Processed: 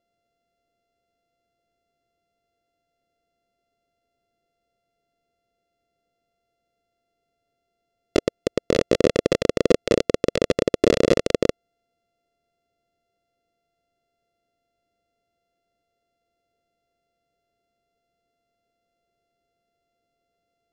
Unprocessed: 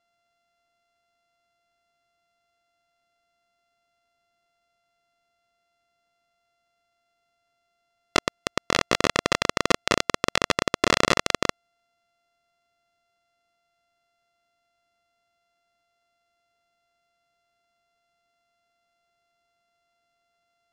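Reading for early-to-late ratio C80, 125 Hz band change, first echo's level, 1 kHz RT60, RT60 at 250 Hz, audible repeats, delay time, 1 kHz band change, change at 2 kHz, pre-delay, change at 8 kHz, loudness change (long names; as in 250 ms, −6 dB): no reverb audible, +4.5 dB, no echo audible, no reverb audible, no reverb audible, no echo audible, no echo audible, −9.0 dB, −7.5 dB, no reverb audible, −6.0 dB, +2.0 dB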